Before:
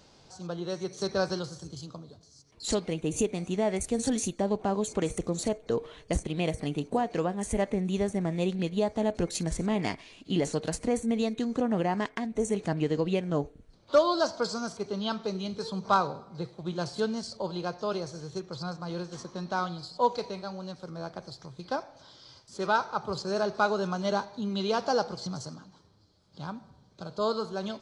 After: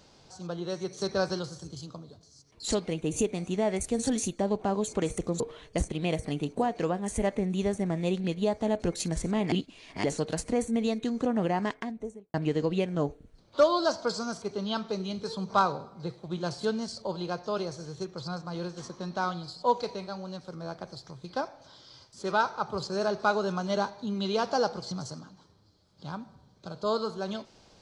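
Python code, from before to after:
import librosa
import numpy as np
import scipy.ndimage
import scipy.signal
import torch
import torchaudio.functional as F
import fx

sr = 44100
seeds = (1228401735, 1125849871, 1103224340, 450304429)

y = fx.studio_fade_out(x, sr, start_s=12.0, length_s=0.69)
y = fx.edit(y, sr, fx.cut(start_s=5.4, length_s=0.35),
    fx.reverse_span(start_s=9.87, length_s=0.52), tone=tone)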